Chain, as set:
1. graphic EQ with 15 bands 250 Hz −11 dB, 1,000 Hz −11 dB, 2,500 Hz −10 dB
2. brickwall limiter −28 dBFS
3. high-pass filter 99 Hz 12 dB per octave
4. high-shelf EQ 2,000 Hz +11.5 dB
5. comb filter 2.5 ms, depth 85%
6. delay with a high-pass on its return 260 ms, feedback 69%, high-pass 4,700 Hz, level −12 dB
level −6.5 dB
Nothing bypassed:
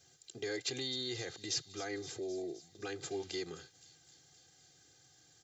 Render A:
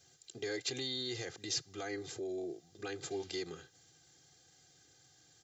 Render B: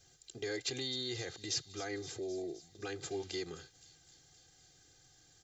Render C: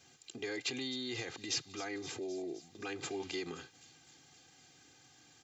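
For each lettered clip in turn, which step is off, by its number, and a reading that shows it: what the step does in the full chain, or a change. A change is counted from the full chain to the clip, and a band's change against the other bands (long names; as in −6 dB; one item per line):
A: 6, echo-to-direct ratio −25.0 dB to none audible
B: 3, 125 Hz band +2.0 dB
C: 1, 125 Hz band −3.5 dB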